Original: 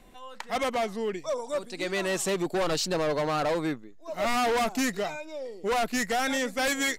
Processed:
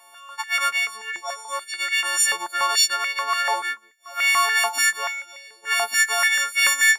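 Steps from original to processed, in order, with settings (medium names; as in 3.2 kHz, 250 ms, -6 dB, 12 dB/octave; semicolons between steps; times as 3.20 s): partials quantised in pitch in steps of 4 st; step-sequenced high-pass 6.9 Hz 910–2200 Hz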